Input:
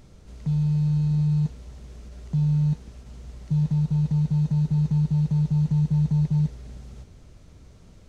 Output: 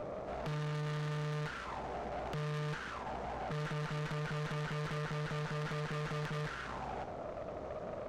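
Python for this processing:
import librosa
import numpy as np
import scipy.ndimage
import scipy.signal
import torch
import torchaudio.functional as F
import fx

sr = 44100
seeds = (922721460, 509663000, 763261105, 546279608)

y = fx.auto_wah(x, sr, base_hz=560.0, top_hz=1500.0, q=4.9, full_db=-27.0, direction='up')
y = fx.fold_sine(y, sr, drive_db=12, ceiling_db=-43.0)
y = fx.tube_stage(y, sr, drive_db=51.0, bias=0.75)
y = y * librosa.db_to_amplitude(15.0)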